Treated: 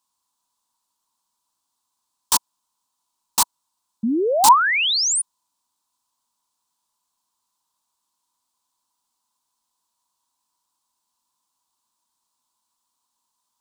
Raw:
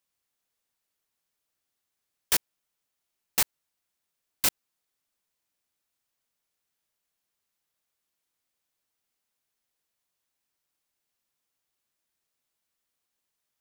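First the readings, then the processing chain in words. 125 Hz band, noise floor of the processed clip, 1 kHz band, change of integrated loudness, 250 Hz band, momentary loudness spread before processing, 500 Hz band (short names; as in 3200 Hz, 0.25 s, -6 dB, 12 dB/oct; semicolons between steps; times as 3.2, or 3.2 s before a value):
n/a, -78 dBFS, +25.5 dB, +9.0 dB, +21.5 dB, 2 LU, +21.5 dB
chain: ten-band EQ 125 Hz -3 dB, 250 Hz +7 dB, 500 Hz -7 dB, 1000 Hz +11 dB, 2000 Hz -11 dB, 4000 Hz +7 dB, 8000 Hz +9 dB; painted sound rise, 4.03–5.22, 210–10000 Hz -20 dBFS; bell 980 Hz +13 dB 0.35 oct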